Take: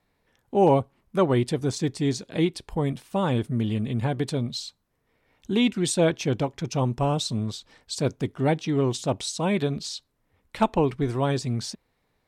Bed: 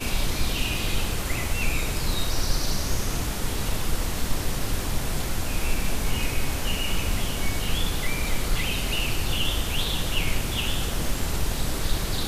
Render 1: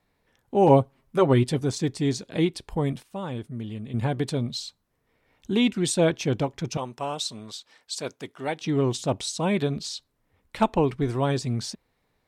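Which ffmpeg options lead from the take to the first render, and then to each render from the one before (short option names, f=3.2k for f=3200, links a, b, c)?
-filter_complex "[0:a]asettb=1/sr,asplit=3[a][b][c];[a]atrim=end=0.674[d];[b]atrim=start=0.67:end=1.59,asetpts=PTS-STARTPTS,afade=t=in:d=0.004:c=qsin,afade=t=out:st=0.916:d=0.004:c=qsin,aecho=1:1:7.5:0.61,atrim=end_sample=40572[e];[c]atrim=start=1.586[f];[d][e]acrossfade=d=0.004:c1=hsin:c2=qsin[g];[g][f]acrossfade=d=0.004:c1=qsin:c2=hsin,asettb=1/sr,asplit=3[h][i][j];[h]atrim=end=6.774[k];[i]atrim=start=6.77:end=8.61,asetpts=PTS-STARTPTS,afade=t=in:d=0.004:c=qsin,afade=t=out:st=1.836:d=0.004:c=qsin,highpass=f=870:p=1[l];[j]atrim=start=8.606[m];[k][l]acrossfade=d=0.004:c1=hsin:c2=qsin[n];[n][m]acrossfade=d=0.004:c1=qsin:c2=hsin,asplit=3[o][p][q];[o]atrim=end=3.032[r];[p]atrim=start=3.028:end=3.942,asetpts=PTS-STARTPTS,volume=-8.5dB[s];[q]atrim=start=3.938[t];[r][s]acrossfade=d=0.004:c1=hsin:c2=hsin[u];[u][t]acrossfade=d=0.004:c1=hsin:c2=hsin"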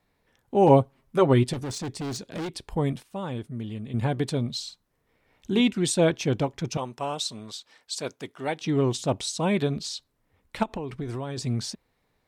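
-filter_complex "[0:a]asettb=1/sr,asplit=3[a][b][c];[a]atrim=end=1.534[d];[b]atrim=start=1.53:end=2.53,asetpts=PTS-STARTPTS,afade=t=in:d=0.004:c=qsin,afade=t=out:st=0.996:d=0.004:c=qsin,volume=29.5dB,asoftclip=hard,volume=-29.5dB[e];[c]atrim=start=2.526[f];[d][e]acrossfade=d=0.004:c1=hsin:c2=qsin[g];[g][f]acrossfade=d=0.004:c1=qsin:c2=hsin,asettb=1/sr,asplit=3[h][i][j];[h]atrim=end=4.624[k];[i]atrim=start=4.62:end=5.61,asetpts=PTS-STARTPTS,afade=t=in:d=0.004:c=qsin,afade=t=out:st=0.986:d=0.004:c=qsin,asplit=2[l][m];[m]adelay=48,volume=-9dB[n];[l][n]amix=inputs=2:normalize=0,atrim=end_sample=43659[o];[j]atrim=start=5.606[p];[k][o]acrossfade=d=0.004:c1=hsin:c2=qsin[q];[q][p]acrossfade=d=0.004:c1=qsin:c2=hsin,asplit=3[r][s][t];[r]afade=t=out:st=10.62:d=0.02[u];[s]acompressor=threshold=-28dB:ratio=16:attack=3.2:release=140:knee=1:detection=peak,afade=t=in:st=10.62:d=0.02,afade=t=out:st=11.37:d=0.02[v];[t]afade=t=in:st=11.37:d=0.02[w];[u][v][w]amix=inputs=3:normalize=0"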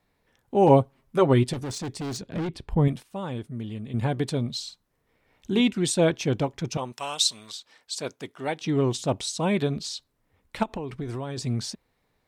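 -filter_complex "[0:a]asettb=1/sr,asplit=3[a][b][c];[a]atrim=end=2.214[d];[b]atrim=start=2.21:end=2.88,asetpts=PTS-STARTPTS,afade=t=in:d=0.004:c=qsin,afade=t=out:st=0.666:d=0.004:c=qsin,bass=f=250:g=8,treble=f=4k:g=-10[e];[c]atrim=start=2.876[f];[d][e]acrossfade=d=0.004:c1=hsin:c2=qsin[g];[g][f]acrossfade=d=0.004:c1=qsin:c2=hsin,asettb=1/sr,asplit=3[h][i][j];[h]atrim=end=6.924[k];[i]atrim=start=6.92:end=7.52,asetpts=PTS-STARTPTS,afade=t=in:d=0.004:c=qsin,afade=t=out:st=0.596:d=0.004:c=qsin,tiltshelf=f=1.1k:g=-9.5[l];[j]atrim=start=7.516[m];[k][l]acrossfade=d=0.004:c1=hsin:c2=qsin[n];[n][m]acrossfade=d=0.004:c1=qsin:c2=hsin"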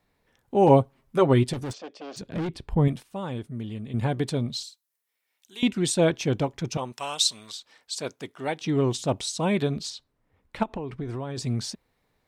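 -filter_complex "[0:a]asplit=3[a][b][c];[a]afade=t=out:st=1.72:d=0.02[d];[b]highpass=f=350:w=0.5412,highpass=f=350:w=1.3066,equalizer=f=380:t=q:w=4:g=-9,equalizer=f=560:t=q:w=4:g=7,equalizer=f=920:t=q:w=4:g=-8,equalizer=f=1.4k:t=q:w=4:g=-3,equalizer=f=2k:t=q:w=4:g=-9,equalizer=f=4k:t=q:w=4:g=-10,lowpass=f=4.5k:w=0.5412,lowpass=f=4.5k:w=1.3066,afade=t=in:st=1.72:d=0.02,afade=t=out:st=2.16:d=0.02[e];[c]afade=t=in:st=2.16:d=0.02[f];[d][e][f]amix=inputs=3:normalize=0,asettb=1/sr,asplit=3[g][h][i];[g]atrim=end=4.634[j];[h]atrim=start=4.63:end=5.63,asetpts=PTS-STARTPTS,afade=t=in:d=0.004:c=qsin,afade=t=out:st=0.996:d=0.004:c=qsin,aderivative[k];[i]atrim=start=5.626[l];[j][k]acrossfade=d=0.004:c1=hsin:c2=qsin[m];[m][l]acrossfade=d=0.004:c1=qsin:c2=hsin,asettb=1/sr,asplit=3[n][o][p];[n]atrim=end=9.904[q];[o]atrim=start=9.9:end=11.35,asetpts=PTS-STARTPTS,afade=t=in:d=0.004:c=qsin,afade=t=out:st=1.446:d=0.004:c=qsin,highshelf=f=4.2k:g=-9.5[r];[p]atrim=start=11.346[s];[q][r]acrossfade=d=0.004:c1=hsin:c2=qsin[t];[t][s]acrossfade=d=0.004:c1=qsin:c2=hsin"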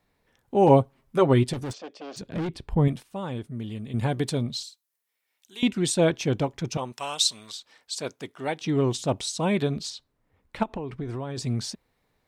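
-filter_complex "[0:a]asettb=1/sr,asplit=3[a][b][c];[a]atrim=end=3.624[d];[b]atrim=start=3.62:end=4.43,asetpts=PTS-STARTPTS,afade=t=in:d=0.004:c=qsin,afade=t=out:st=0.806:d=0.004:c=qsin,highshelf=f=4.5k:g=5.5[e];[c]atrim=start=4.426[f];[d][e]acrossfade=d=0.004:c1=hsin:c2=qsin[g];[g][f]acrossfade=d=0.004:c1=qsin:c2=hsin"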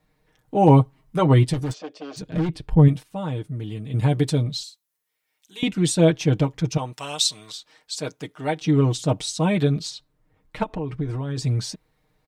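-af "lowshelf=f=220:g=5.5,aecho=1:1:6.5:0.72"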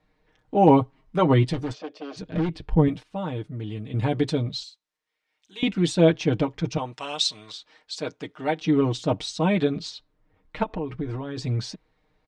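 -af "lowpass=4.6k,equalizer=f=140:w=6.5:g=-13.5"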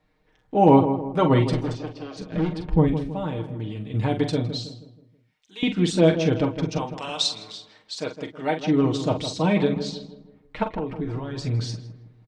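-filter_complex "[0:a]asplit=2[a][b];[b]adelay=44,volume=-8.5dB[c];[a][c]amix=inputs=2:normalize=0,asplit=2[d][e];[e]adelay=160,lowpass=f=1.3k:p=1,volume=-9dB,asplit=2[f][g];[g]adelay=160,lowpass=f=1.3k:p=1,volume=0.44,asplit=2[h][i];[i]adelay=160,lowpass=f=1.3k:p=1,volume=0.44,asplit=2[j][k];[k]adelay=160,lowpass=f=1.3k:p=1,volume=0.44,asplit=2[l][m];[m]adelay=160,lowpass=f=1.3k:p=1,volume=0.44[n];[d][f][h][j][l][n]amix=inputs=6:normalize=0"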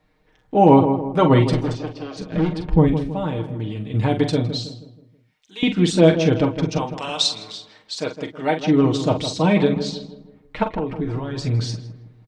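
-af "volume=4dB,alimiter=limit=-2dB:level=0:latency=1"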